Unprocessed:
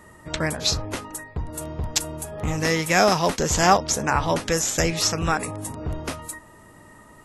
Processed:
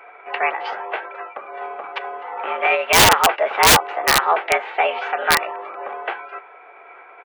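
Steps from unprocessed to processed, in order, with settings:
comb filter 2.7 ms, depth 32%
single-sideband voice off tune +88 Hz 370–2,200 Hz
formants moved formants +3 semitones
wrap-around overflow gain 12.5 dB
level +7.5 dB

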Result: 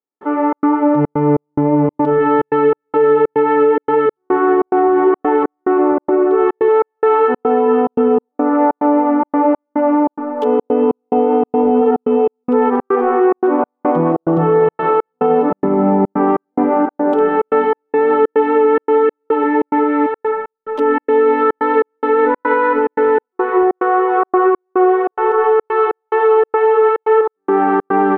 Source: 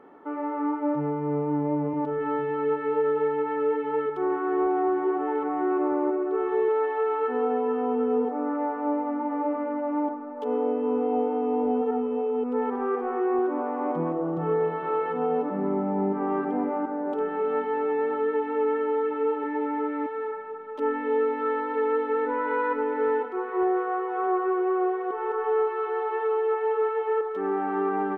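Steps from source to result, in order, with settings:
gate pattern "..xxx.xxxx.xx" 143 BPM −60 dB
boost into a limiter +19 dB
level −4 dB

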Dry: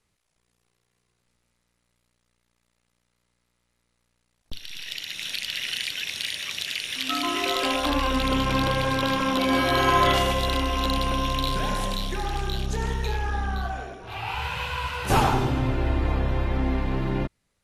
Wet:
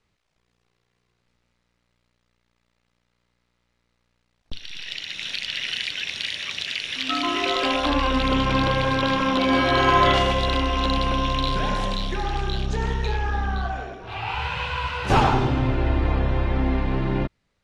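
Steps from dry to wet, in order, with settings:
low-pass filter 4,900 Hz 12 dB per octave
level +2.5 dB

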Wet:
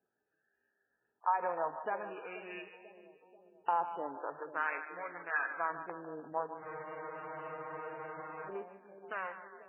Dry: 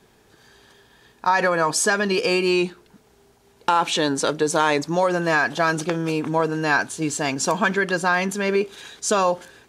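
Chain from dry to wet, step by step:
adaptive Wiener filter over 41 samples
auto-filter band-pass sine 0.45 Hz 750–1,900 Hz
on a send: echo with a time of its own for lows and highs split 630 Hz, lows 487 ms, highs 150 ms, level −10.5 dB
on the sum: frozen spectrum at 0:06.64, 1.85 s
level −8 dB
MP3 8 kbit/s 8,000 Hz

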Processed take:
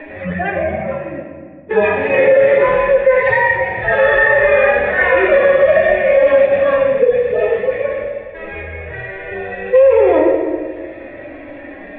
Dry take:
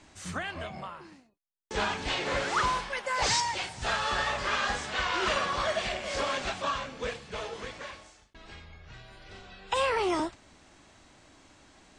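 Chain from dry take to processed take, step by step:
harmonic-percussive split with one part muted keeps harmonic
formant resonators in series e
on a send at −2 dB: convolution reverb RT60 1.3 s, pre-delay 4 ms
on the sum: boost into a limiter +32.5 dB
multiband upward and downward compressor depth 40%
level −1.5 dB

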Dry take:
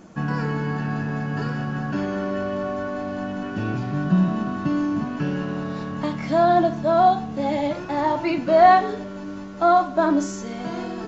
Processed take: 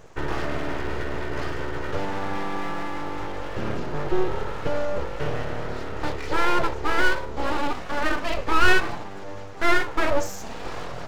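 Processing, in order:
reverb whose tail is shaped and stops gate 110 ms falling, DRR 11.5 dB
full-wave rectification

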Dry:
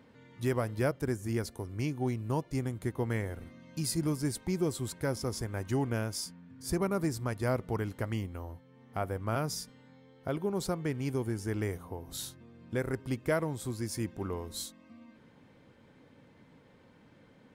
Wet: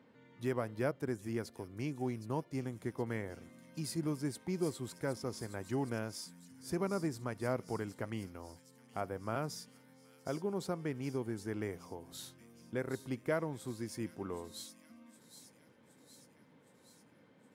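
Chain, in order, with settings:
high-pass filter 140 Hz 12 dB per octave
high-shelf EQ 4,400 Hz −6.5 dB
on a send: delay with a high-pass on its return 767 ms, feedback 61%, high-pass 4,500 Hz, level −7.5 dB
on the sum: level −4 dB

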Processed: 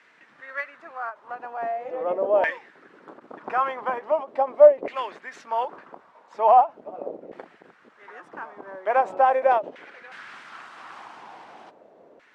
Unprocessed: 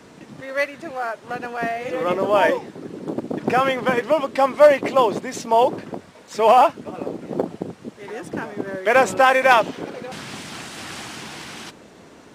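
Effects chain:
auto-filter band-pass saw down 0.41 Hz 530–2,000 Hz
every ending faded ahead of time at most 300 dB per second

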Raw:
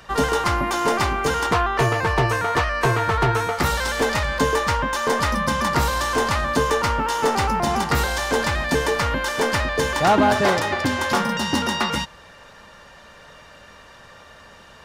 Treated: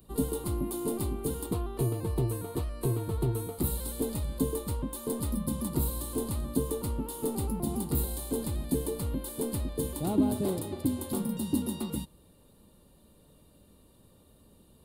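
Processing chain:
drawn EQ curve 140 Hz 0 dB, 320 Hz +3 dB, 660 Hz −14 dB, 1,100 Hz −18 dB, 1,700 Hz −29 dB, 4,100 Hz −9 dB, 5,800 Hz −22 dB, 9,400 Hz +7 dB, 14,000 Hz +9 dB
level −6.5 dB

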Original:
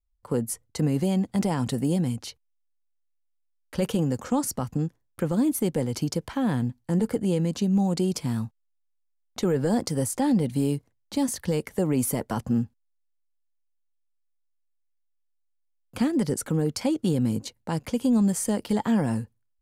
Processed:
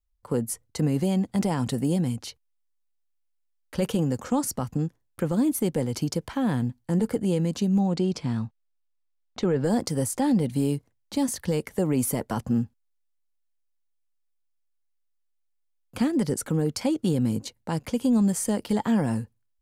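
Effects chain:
0:07.79–0:09.64: low-pass filter 4,800 Hz 12 dB per octave

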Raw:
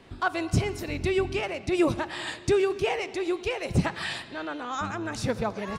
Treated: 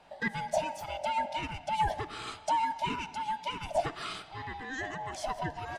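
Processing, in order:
neighbouring bands swapped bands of 500 Hz
level −6 dB

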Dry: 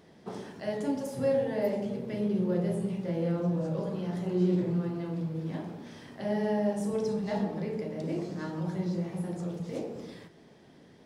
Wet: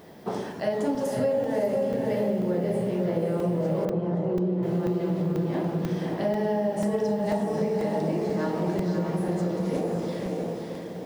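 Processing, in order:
parametric band 700 Hz +5 dB 1.8 octaves
feedback delay with all-pass diffusion 577 ms, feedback 47%, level −4 dB
downward compressor, threshold −29 dBFS, peak gain reduction 10 dB
background noise violet −71 dBFS
0:03.85–0:04.63: low-pass filter 1,000 Hz 6 dB per octave
regular buffer underruns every 0.49 s, samples 128, zero, from 0:00.95
level +6.5 dB

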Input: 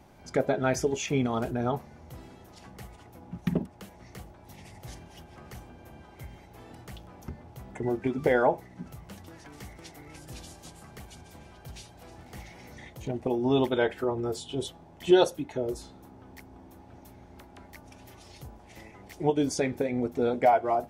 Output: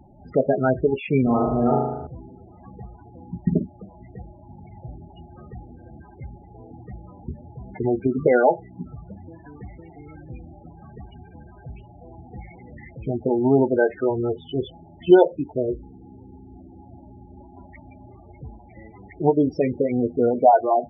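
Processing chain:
0:15.45–0:16.69: running median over 25 samples
Savitzky-Golay smoothing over 25 samples
spectral peaks only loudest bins 16
0:01.23–0:02.07: flutter between parallel walls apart 6.5 metres, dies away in 1 s
level +7 dB

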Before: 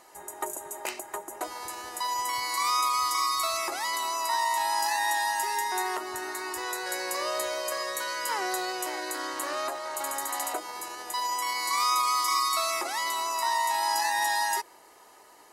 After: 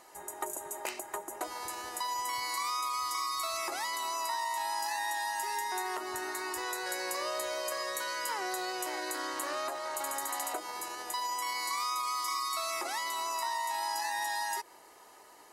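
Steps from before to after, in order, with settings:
downward compressor 4 to 1, threshold −30 dBFS, peak gain reduction 7.5 dB
level −1.5 dB

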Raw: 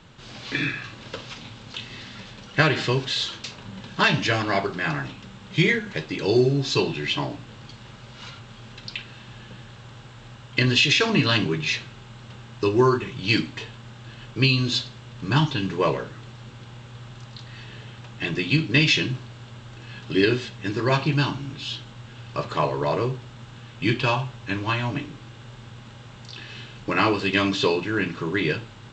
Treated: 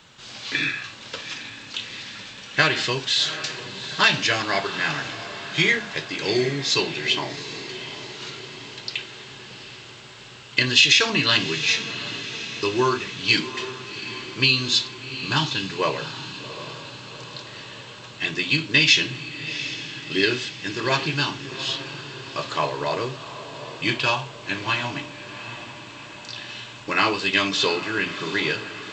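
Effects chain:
spectral tilt +2.5 dB per octave
feedback delay with all-pass diffusion 763 ms, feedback 59%, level −12 dB

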